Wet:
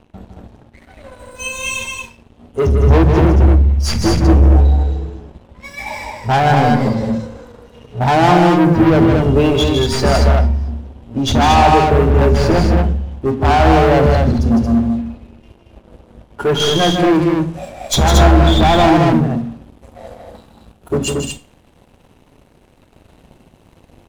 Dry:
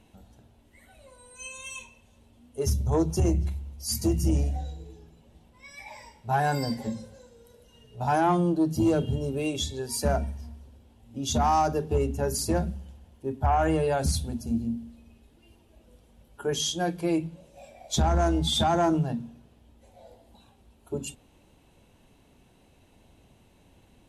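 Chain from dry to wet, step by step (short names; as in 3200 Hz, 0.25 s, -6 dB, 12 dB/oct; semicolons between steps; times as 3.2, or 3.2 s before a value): tracing distortion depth 0.026 ms; treble ducked by the level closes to 1800 Hz, closed at -23 dBFS; high shelf 7700 Hz -10 dB, from 16.6 s +4 dB; sample leveller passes 3; loudspeakers at several distances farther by 54 m -6 dB, 78 m -4 dB; Schroeder reverb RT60 0.36 s, combs from 31 ms, DRR 13.5 dB; mismatched tape noise reduction decoder only; gain +7 dB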